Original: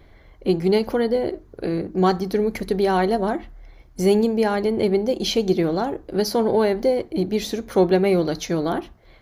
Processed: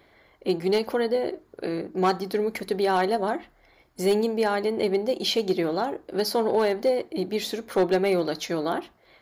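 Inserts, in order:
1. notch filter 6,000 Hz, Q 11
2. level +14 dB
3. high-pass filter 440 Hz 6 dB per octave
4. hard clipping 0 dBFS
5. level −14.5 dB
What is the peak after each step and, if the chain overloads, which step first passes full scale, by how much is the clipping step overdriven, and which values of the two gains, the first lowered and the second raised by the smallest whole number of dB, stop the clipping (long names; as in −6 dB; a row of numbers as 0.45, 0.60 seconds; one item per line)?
−6.0, +8.0, +5.0, 0.0, −14.5 dBFS
step 2, 5.0 dB
step 2 +9 dB, step 5 −9.5 dB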